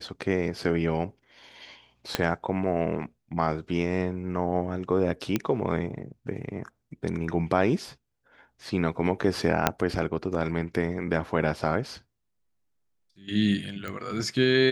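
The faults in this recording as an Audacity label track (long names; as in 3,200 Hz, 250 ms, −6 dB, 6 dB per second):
2.150000	2.150000	click −8 dBFS
5.360000	5.360000	click −11 dBFS
9.670000	9.670000	click −4 dBFS
13.880000	13.880000	click −21 dBFS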